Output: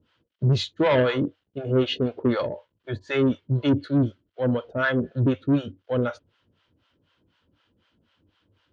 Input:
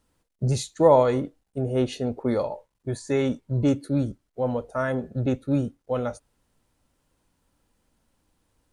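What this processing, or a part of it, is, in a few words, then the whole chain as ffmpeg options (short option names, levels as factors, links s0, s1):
guitar amplifier with harmonic tremolo: -filter_complex "[0:a]acrossover=split=620[s0][s1];[s0]aeval=exprs='val(0)*(1-1/2+1/2*cos(2*PI*4*n/s))':c=same[s2];[s1]aeval=exprs='val(0)*(1-1/2-1/2*cos(2*PI*4*n/s))':c=same[s3];[s2][s3]amix=inputs=2:normalize=0,asoftclip=type=tanh:threshold=0.0708,highpass=90,equalizer=f=94:t=q:w=4:g=9,equalizer=f=340:t=q:w=4:g=4,equalizer=f=790:t=q:w=4:g=-7,equalizer=f=1500:t=q:w=4:g=5,equalizer=f=3100:t=q:w=4:g=10,lowpass=f=4400:w=0.5412,lowpass=f=4400:w=1.3066,volume=2.51"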